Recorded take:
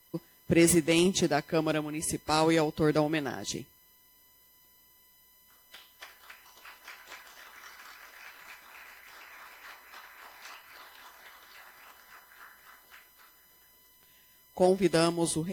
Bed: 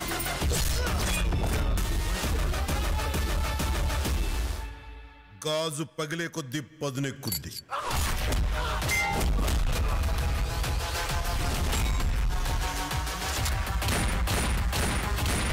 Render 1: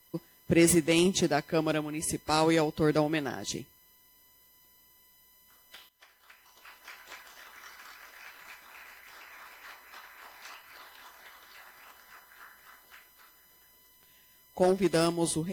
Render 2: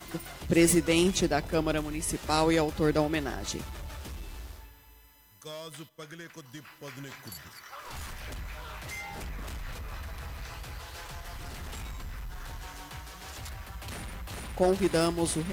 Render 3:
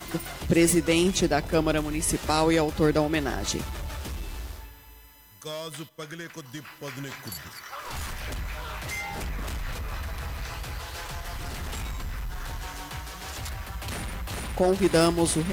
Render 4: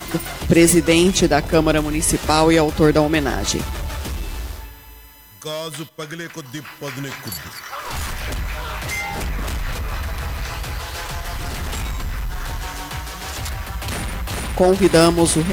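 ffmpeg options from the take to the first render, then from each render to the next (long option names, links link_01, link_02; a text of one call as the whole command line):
ffmpeg -i in.wav -filter_complex "[0:a]asettb=1/sr,asplit=3[link_01][link_02][link_03];[link_01]atrim=end=14.634[link_04];[link_02]atrim=start=14.63:end=15.22,asetpts=PTS-STARTPTS,afade=type=in:duration=0.004:curve=qsin,afade=type=out:start_time=0.586:duration=0.004:curve=qsin,asoftclip=type=hard:threshold=-18.5dB[link_05];[link_03]atrim=start=15.216[link_06];[link_04][link_05]acrossfade=duration=0.004:curve1=hsin:curve2=qsin[link_07];[link_07][link_06]acrossfade=duration=0.004:curve1=qsin:curve2=hsin,asplit=2[link_08][link_09];[link_08]atrim=end=5.89,asetpts=PTS-STARTPTS,afade=type=out:start_time=5.886:duration=0.004:curve=hsin:silence=0.199526[link_10];[link_09]atrim=start=5.89,asetpts=PTS-STARTPTS,afade=type=in:duration=1.07:silence=0.199526[link_11];[link_10][link_11]concat=n=2:v=0:a=1" out.wav
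ffmpeg -i in.wav -i bed.wav -filter_complex "[1:a]volume=-13dB[link_01];[0:a][link_01]amix=inputs=2:normalize=0" out.wav
ffmpeg -i in.wav -af "acontrast=52,alimiter=limit=-12dB:level=0:latency=1:release=391" out.wav
ffmpeg -i in.wav -af "volume=8dB" out.wav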